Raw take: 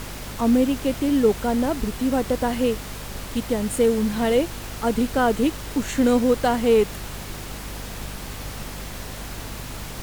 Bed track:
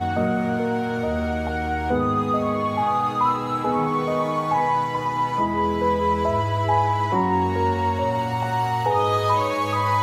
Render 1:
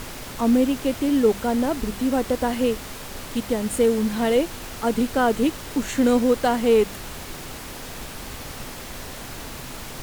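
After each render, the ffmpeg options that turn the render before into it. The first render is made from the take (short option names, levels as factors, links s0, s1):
-af "bandreject=f=50:t=h:w=6,bandreject=f=100:t=h:w=6,bandreject=f=150:t=h:w=6,bandreject=f=200:t=h:w=6"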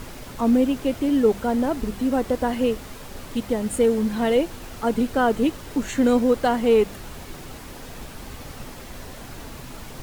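-af "afftdn=nr=6:nf=-36"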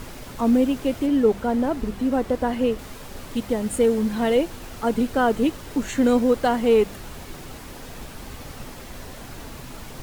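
-filter_complex "[0:a]asettb=1/sr,asplit=3[s0][s1][s2];[s0]atrim=end=1.064[s3];[s1]atrim=start=1.06:end=2.79,asetpts=PTS-STARTPTS,afade=t=in:d=0.004:c=qsin,afade=t=out:st=1.726:d=0.004:c=qsin,highshelf=f=4000:g=-5.5[s4];[s2]atrim=start=2.786[s5];[s3][s4]acrossfade=d=0.004:c1=hsin:c2=qsin[s6];[s6][s5]acrossfade=d=0.004:c1=qsin:c2=hsin"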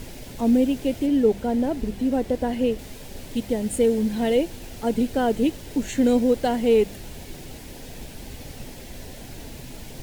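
-af "equalizer=f=1200:t=o:w=0.69:g=-13.5"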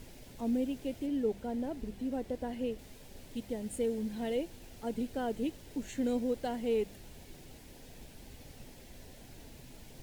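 -af "volume=0.224"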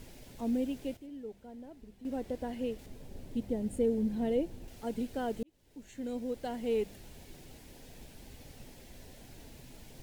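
-filter_complex "[0:a]asettb=1/sr,asplit=3[s0][s1][s2];[s0]atrim=end=2.864[s3];[s1]atrim=start=2.86:end=4.68,asetpts=PTS-STARTPTS,afade=t=in:d=0.004:c=qsin,afade=t=out:st=1.816:d=0.004:c=qsin,tiltshelf=f=810:g=6[s4];[s2]atrim=start=4.676[s5];[s3][s4]acrossfade=d=0.004:c1=hsin:c2=qsin[s6];[s6][s5]acrossfade=d=0.004:c1=qsin:c2=hsin,asplit=4[s7][s8][s9][s10];[s7]atrim=end=0.97,asetpts=PTS-STARTPTS,afade=t=out:st=0.73:d=0.24:c=log:silence=0.251189[s11];[s8]atrim=start=0.97:end=2.05,asetpts=PTS-STARTPTS,volume=0.251[s12];[s9]atrim=start=2.05:end=5.43,asetpts=PTS-STARTPTS,afade=t=in:d=0.24:c=log:silence=0.251189,afade=t=out:st=3.376:d=0.004:c=hsin[s13];[s10]atrim=start=5.43,asetpts=PTS-STARTPTS,afade=t=in:d=1.34[s14];[s11][s12][s13][s14]concat=n=4:v=0:a=1"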